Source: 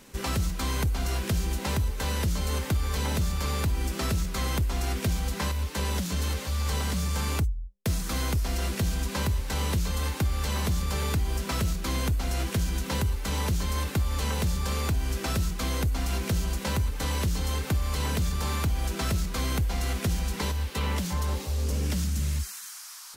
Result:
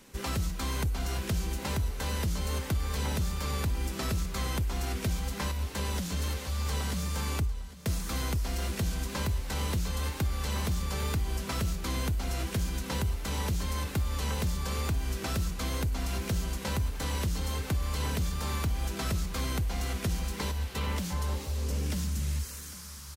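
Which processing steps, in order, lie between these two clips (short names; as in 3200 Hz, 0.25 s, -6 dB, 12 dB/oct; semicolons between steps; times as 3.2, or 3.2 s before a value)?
wow and flutter 18 cents; feedback echo 0.802 s, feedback 49%, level -17 dB; gain -3.5 dB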